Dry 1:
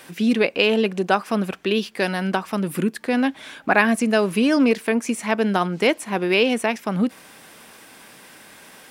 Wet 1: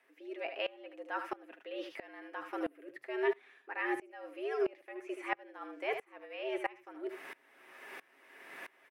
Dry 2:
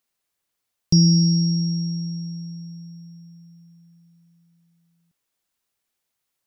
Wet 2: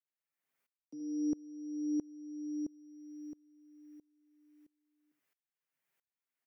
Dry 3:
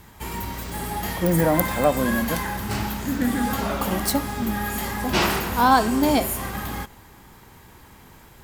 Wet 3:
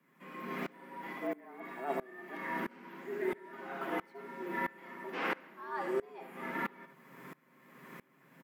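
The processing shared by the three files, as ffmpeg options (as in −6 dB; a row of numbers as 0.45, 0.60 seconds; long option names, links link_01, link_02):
-filter_complex "[0:a]areverse,acompressor=threshold=-29dB:ratio=8,areverse,tiltshelf=frequency=970:gain=4.5,aecho=1:1:7.4:0.41,aecho=1:1:76:0.282,afreqshift=130,acrossover=split=3800[link_01][link_02];[link_02]acompressor=threshold=-59dB:ratio=4:attack=1:release=60[link_03];[link_01][link_03]amix=inputs=2:normalize=0,equalizer=frequency=125:width_type=o:width=1:gain=-7,equalizer=frequency=250:width_type=o:width=1:gain=-6,equalizer=frequency=500:width_type=o:width=1:gain=-5,equalizer=frequency=1000:width_type=o:width=1:gain=-3,equalizer=frequency=2000:width_type=o:width=1:gain=7,equalizer=frequency=4000:width_type=o:width=1:gain=-6,equalizer=frequency=8000:width_type=o:width=1:gain=-4,aeval=exprs='val(0)*pow(10,-25*if(lt(mod(-1.5*n/s,1),2*abs(-1.5)/1000),1-mod(-1.5*n/s,1)/(2*abs(-1.5)/1000),(mod(-1.5*n/s,1)-2*abs(-1.5)/1000)/(1-2*abs(-1.5)/1000))/20)':channel_layout=same,volume=2dB"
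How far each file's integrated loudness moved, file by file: −19.0, −19.5, −16.5 LU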